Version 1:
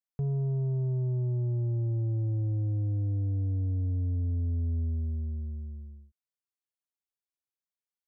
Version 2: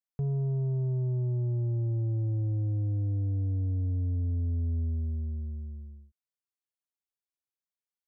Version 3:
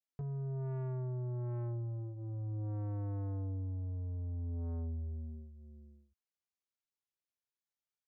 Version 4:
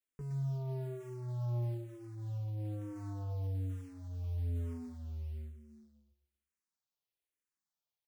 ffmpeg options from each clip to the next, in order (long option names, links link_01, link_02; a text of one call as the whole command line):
ffmpeg -i in.wav -af anull out.wav
ffmpeg -i in.wav -af "flanger=delay=19.5:depth=5.8:speed=0.35,aresample=16000,asoftclip=type=tanh:threshold=-35.5dB,aresample=44100,volume=-1dB" out.wav
ffmpeg -i in.wav -filter_complex "[0:a]asplit=2[link_01][link_02];[link_02]adelay=116,lowpass=frequency=830:poles=1,volume=-11dB,asplit=2[link_03][link_04];[link_04]adelay=116,lowpass=frequency=830:poles=1,volume=0.33,asplit=2[link_05][link_06];[link_06]adelay=116,lowpass=frequency=830:poles=1,volume=0.33,asplit=2[link_07][link_08];[link_08]adelay=116,lowpass=frequency=830:poles=1,volume=0.33[link_09];[link_01][link_03][link_05][link_07][link_09]amix=inputs=5:normalize=0,acrusher=bits=7:mode=log:mix=0:aa=0.000001,asplit=2[link_10][link_11];[link_11]afreqshift=-1.1[link_12];[link_10][link_12]amix=inputs=2:normalize=1,volume=2.5dB" out.wav